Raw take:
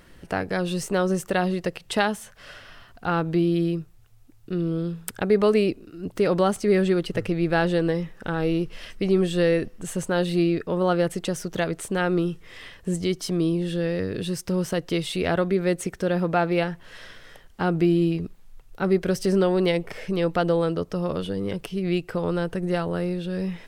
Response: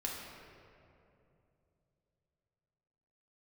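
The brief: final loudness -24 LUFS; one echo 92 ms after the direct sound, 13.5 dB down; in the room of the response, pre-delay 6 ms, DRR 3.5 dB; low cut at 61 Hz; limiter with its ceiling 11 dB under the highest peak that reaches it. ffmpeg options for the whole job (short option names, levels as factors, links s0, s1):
-filter_complex "[0:a]highpass=61,alimiter=limit=0.141:level=0:latency=1,aecho=1:1:92:0.211,asplit=2[s0][s1];[1:a]atrim=start_sample=2205,adelay=6[s2];[s1][s2]afir=irnorm=-1:irlink=0,volume=0.531[s3];[s0][s3]amix=inputs=2:normalize=0,volume=1.06"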